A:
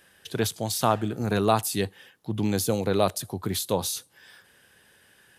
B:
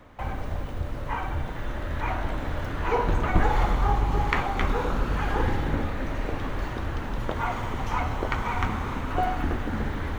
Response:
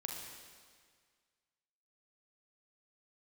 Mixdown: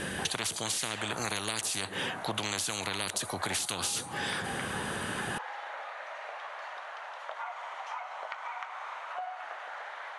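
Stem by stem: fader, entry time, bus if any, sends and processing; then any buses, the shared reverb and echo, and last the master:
+2.5 dB, 0.00 s, no send, peaking EQ 200 Hz +10.5 dB 2.7 oct; band-stop 5.2 kHz, Q 7.5; spectrum-flattening compressor 10:1
-2.5 dB, 0.00 s, no send, elliptic high-pass 630 Hz, stop band 80 dB; treble shelf 6.2 kHz -8 dB; compression 6:1, threshold -33 dBFS, peak gain reduction 11.5 dB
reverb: none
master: steep low-pass 11 kHz 72 dB/octave; compression 10:1, threshold -29 dBFS, peak gain reduction 12.5 dB

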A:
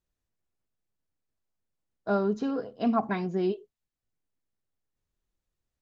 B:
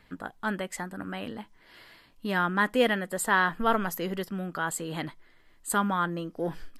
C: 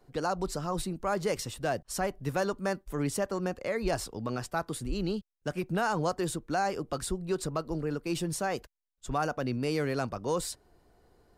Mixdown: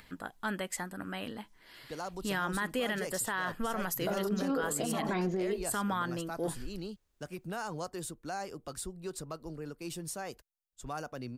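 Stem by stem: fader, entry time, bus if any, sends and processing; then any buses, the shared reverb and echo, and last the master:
+2.5 dB, 2.00 s, no send, compressor with a negative ratio -32 dBFS, ratio -1; peaking EQ 130 Hz -11.5 dB 0.76 oct
-4.0 dB, 0.00 s, no send, treble shelf 3.4 kHz +8 dB; upward compressor, threshold -47 dBFS
-9.5 dB, 1.75 s, no send, treble shelf 6.1 kHz +9.5 dB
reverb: none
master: peak limiter -23.5 dBFS, peak gain reduction 10 dB

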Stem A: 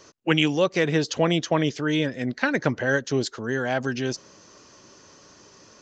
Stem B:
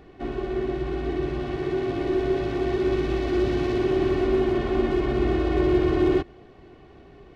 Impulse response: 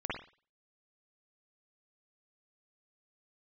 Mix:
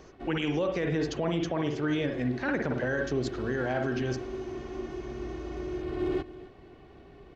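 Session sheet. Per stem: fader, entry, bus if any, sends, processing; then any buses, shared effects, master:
-5.0 dB, 0.00 s, send -7 dB, no echo send, treble shelf 2.7 kHz -10 dB
-3.0 dB, 0.00 s, no send, echo send -23 dB, auto duck -12 dB, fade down 0.50 s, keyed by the first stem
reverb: on, pre-delay 47 ms
echo: delay 271 ms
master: peak limiter -20 dBFS, peak gain reduction 8.5 dB

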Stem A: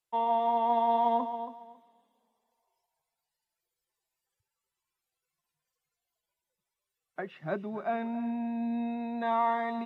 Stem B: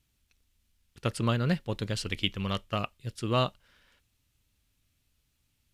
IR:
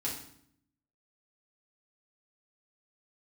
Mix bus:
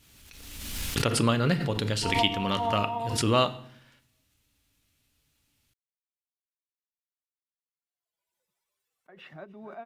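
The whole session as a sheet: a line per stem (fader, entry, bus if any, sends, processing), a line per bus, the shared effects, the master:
-5.0 dB, 1.90 s, no send, upward expansion 2.5:1, over -45 dBFS
+2.0 dB, 0.00 s, send -10 dB, none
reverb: on, RT60 0.65 s, pre-delay 4 ms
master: bass shelf 100 Hz -9 dB; swell ahead of each attack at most 36 dB/s

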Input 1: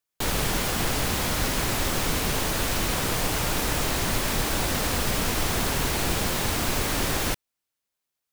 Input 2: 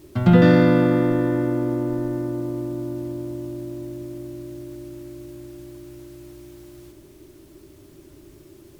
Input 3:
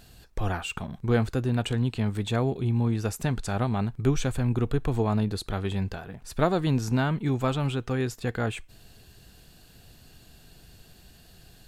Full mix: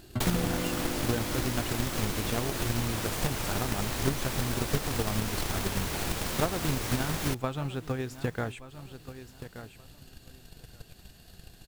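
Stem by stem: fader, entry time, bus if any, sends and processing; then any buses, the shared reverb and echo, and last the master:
-1.0 dB, 0.00 s, no send, echo send -21.5 dB, none
-11.0 dB, 0.00 s, no send, no echo send, none
-1.5 dB, 0.00 s, no send, echo send -17 dB, none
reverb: none
echo: feedback delay 1176 ms, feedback 18%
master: transient shaper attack +11 dB, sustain -1 dB; compression 1.5:1, threshold -40 dBFS, peak gain reduction 10 dB

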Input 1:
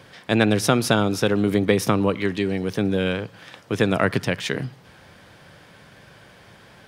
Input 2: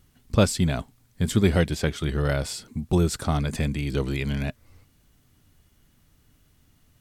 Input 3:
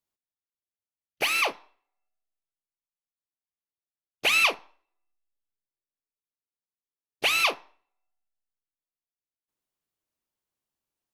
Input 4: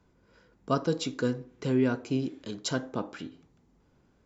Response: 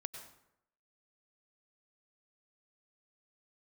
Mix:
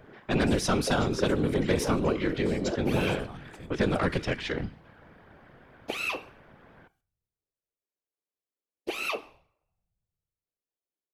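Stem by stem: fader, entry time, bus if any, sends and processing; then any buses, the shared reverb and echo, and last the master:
+3.0 dB, 0.00 s, no bus, no send, level-controlled noise filter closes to 1.6 kHz, open at -14.5 dBFS
-12.0 dB, 0.00 s, no bus, no send, none
-1.0 dB, 1.65 s, bus A, send -17 dB, peaking EQ 470 Hz +5.5 dB 0.83 oct
+2.5 dB, 0.00 s, bus A, no send, step-sequenced high-pass 6.9 Hz 370–2600 Hz
bus A: 0.0 dB, peaking EQ 390 Hz +11.5 dB 2 oct; compression 5:1, threshold -24 dBFS, peak gain reduction 17.5 dB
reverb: on, RT60 0.80 s, pre-delay 87 ms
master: saturation -8.5 dBFS, distortion -15 dB; feedback comb 380 Hz, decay 0.38 s, harmonics all, mix 60%; whisper effect

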